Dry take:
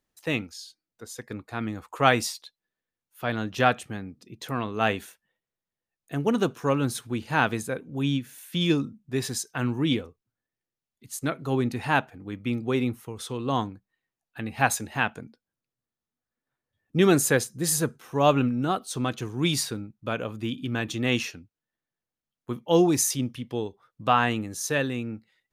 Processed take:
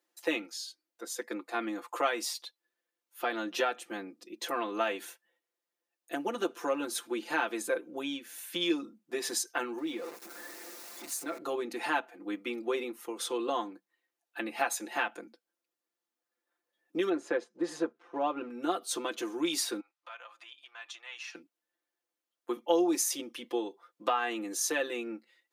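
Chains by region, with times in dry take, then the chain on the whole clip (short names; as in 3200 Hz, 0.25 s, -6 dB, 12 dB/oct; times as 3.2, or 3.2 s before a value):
9.78–11.38 zero-crossing step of -38.5 dBFS + bell 3100 Hz -7.5 dB 0.29 oct + compressor 4:1, threshold -34 dBFS
17.09–18.5 G.711 law mismatch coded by A + tape spacing loss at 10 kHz 31 dB
19.8–21.35 compressor 5:1, threshold -39 dBFS + HPF 840 Hz 24 dB/oct + air absorption 65 m
whole clip: compressor 6:1, threshold -28 dBFS; elliptic high-pass 270 Hz, stop band 80 dB; comb 5.8 ms, depth 93%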